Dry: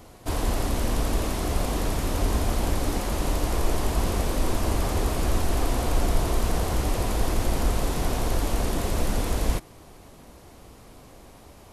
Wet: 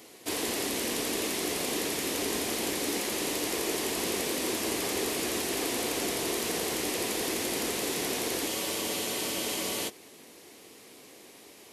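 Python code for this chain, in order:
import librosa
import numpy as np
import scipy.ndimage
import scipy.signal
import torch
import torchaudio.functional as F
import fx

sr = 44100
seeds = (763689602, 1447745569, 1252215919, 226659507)

y = scipy.signal.sosfilt(scipy.signal.butter(2, 400.0, 'highpass', fs=sr, output='sos'), x)
y = fx.band_shelf(y, sr, hz=910.0, db=-10.0, octaves=1.7)
y = fx.spec_freeze(y, sr, seeds[0], at_s=8.51, hold_s=1.37)
y = F.gain(torch.from_numpy(y), 4.0).numpy()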